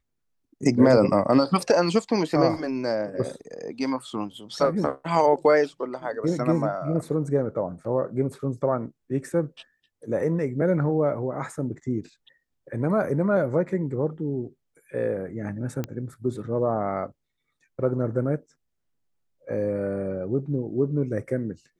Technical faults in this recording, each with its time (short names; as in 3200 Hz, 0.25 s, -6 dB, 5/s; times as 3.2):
15.84 pop -16 dBFS